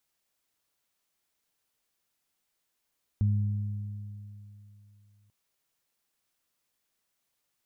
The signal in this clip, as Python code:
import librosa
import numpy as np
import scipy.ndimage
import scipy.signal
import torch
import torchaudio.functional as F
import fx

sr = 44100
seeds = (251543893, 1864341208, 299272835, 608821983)

y = fx.additive(sr, length_s=2.09, hz=103.0, level_db=-21.0, upper_db=(-10.5,), decay_s=3.02, upper_decays_s=(2.63,))